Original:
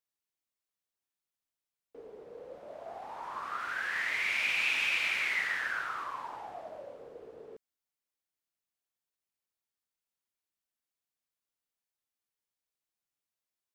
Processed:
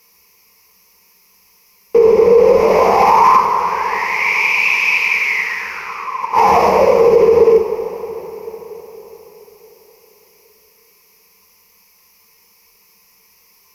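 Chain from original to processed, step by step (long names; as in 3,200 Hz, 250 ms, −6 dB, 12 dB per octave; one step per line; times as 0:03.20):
gate with flip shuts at −31 dBFS, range −27 dB
EQ curve with evenly spaced ripples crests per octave 0.82, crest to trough 17 dB
coupled-rooms reverb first 0.32 s, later 4.8 s, from −18 dB, DRR 3.5 dB
boost into a limiter +35.5 dB
level −1 dB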